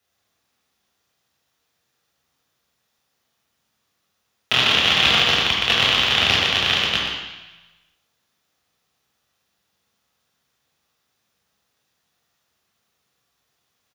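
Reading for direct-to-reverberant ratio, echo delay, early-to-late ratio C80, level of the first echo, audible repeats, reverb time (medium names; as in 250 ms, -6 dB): -4.0 dB, 119 ms, 2.0 dB, -7.0 dB, 1, 1.1 s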